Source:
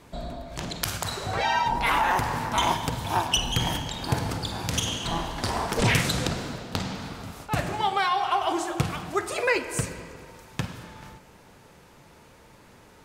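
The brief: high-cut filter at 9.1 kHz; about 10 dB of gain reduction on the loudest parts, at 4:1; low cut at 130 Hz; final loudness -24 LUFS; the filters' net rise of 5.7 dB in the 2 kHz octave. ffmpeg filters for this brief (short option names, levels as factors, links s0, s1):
-af "highpass=130,lowpass=9100,equalizer=f=2000:t=o:g=7,acompressor=threshold=0.0447:ratio=4,volume=2.11"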